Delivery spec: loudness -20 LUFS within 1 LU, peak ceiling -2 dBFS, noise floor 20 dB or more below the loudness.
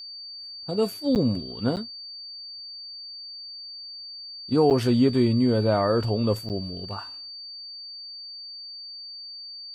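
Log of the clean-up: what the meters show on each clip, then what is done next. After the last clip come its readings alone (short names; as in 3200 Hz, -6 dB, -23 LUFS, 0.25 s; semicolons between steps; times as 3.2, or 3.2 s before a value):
dropouts 4; longest dropout 8.6 ms; steady tone 4600 Hz; tone level -37 dBFS; loudness -27.0 LUFS; peak -9.0 dBFS; loudness target -20.0 LUFS
-> interpolate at 1.15/1.76/4.7/6.49, 8.6 ms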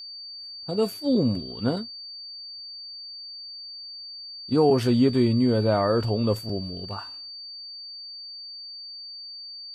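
dropouts 0; steady tone 4600 Hz; tone level -37 dBFS
-> notch 4600 Hz, Q 30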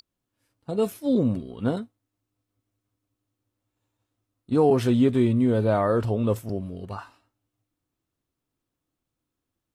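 steady tone none; loudness -23.5 LUFS; peak -9.5 dBFS; loudness target -20.0 LUFS
-> gain +3.5 dB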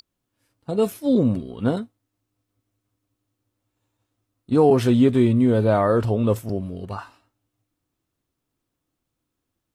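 loudness -20.0 LUFS; peak -6.0 dBFS; noise floor -80 dBFS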